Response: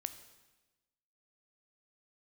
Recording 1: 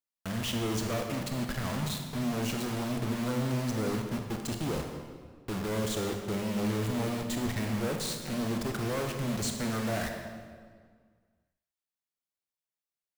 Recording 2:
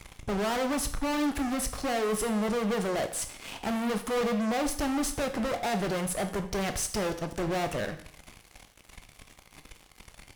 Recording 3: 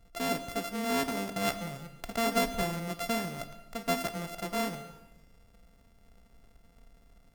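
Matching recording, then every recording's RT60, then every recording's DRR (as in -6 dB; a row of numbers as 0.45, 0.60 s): 3; 1.8, 0.55, 1.2 s; 3.0, 7.5, 10.0 dB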